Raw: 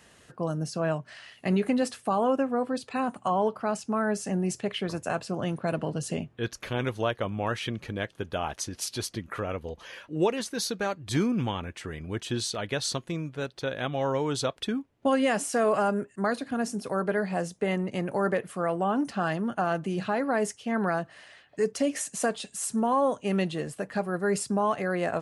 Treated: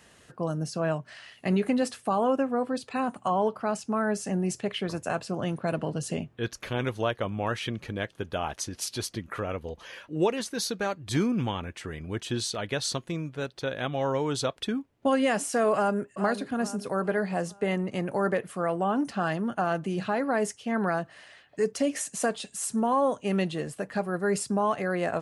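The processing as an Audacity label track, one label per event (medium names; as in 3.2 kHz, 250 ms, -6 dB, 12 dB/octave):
15.730000	16.230000	echo throw 430 ms, feedback 45%, level -10 dB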